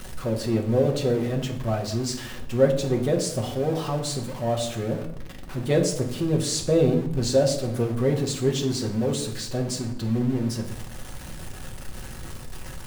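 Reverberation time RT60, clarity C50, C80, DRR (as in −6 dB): 0.80 s, 9.5 dB, 13.0 dB, 1.5 dB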